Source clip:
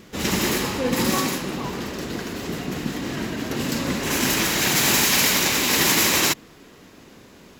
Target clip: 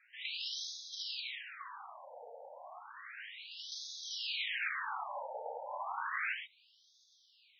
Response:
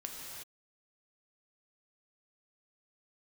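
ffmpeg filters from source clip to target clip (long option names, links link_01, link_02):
-filter_complex "[1:a]atrim=start_sample=2205,atrim=end_sample=6174[link_01];[0:a][link_01]afir=irnorm=-1:irlink=0,afftfilt=real='re*between(b*sr/1024,650*pow(4700/650,0.5+0.5*sin(2*PI*0.32*pts/sr))/1.41,650*pow(4700/650,0.5+0.5*sin(2*PI*0.32*pts/sr))*1.41)':imag='im*between(b*sr/1024,650*pow(4700/650,0.5+0.5*sin(2*PI*0.32*pts/sr))/1.41,650*pow(4700/650,0.5+0.5*sin(2*PI*0.32*pts/sr))*1.41)':win_size=1024:overlap=0.75,volume=-6.5dB"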